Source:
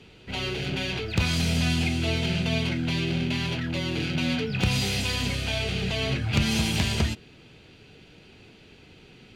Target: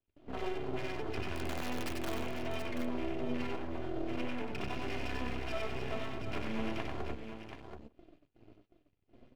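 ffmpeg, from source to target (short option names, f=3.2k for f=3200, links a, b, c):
-filter_complex "[0:a]lowpass=f=1.1k:p=1,asplit=2[a][b];[b]alimiter=limit=-22.5dB:level=0:latency=1:release=495,volume=2dB[c];[a][c]amix=inputs=2:normalize=0,highpass=f=40:p=1,afwtdn=0.0224,equalizer=f=94:t=o:w=1.9:g=-10,aecho=1:1:2.9:0.81,acompressor=threshold=-28dB:ratio=8,asplit=3[d][e][f];[d]afade=t=out:st=1.33:d=0.02[g];[e]aeval=exprs='(mod(15.8*val(0)+1,2)-1)/15.8':c=same,afade=t=in:st=1.33:d=0.02,afade=t=out:st=2.11:d=0.02[h];[f]afade=t=in:st=2.11:d=0.02[i];[g][h][i]amix=inputs=3:normalize=0,flanger=delay=3.2:depth=7.1:regen=45:speed=0.4:shape=sinusoidal,agate=range=-23dB:threshold=-57dB:ratio=16:detection=peak,aeval=exprs='max(val(0),0)':c=same,aecho=1:1:94|730:0.668|0.422"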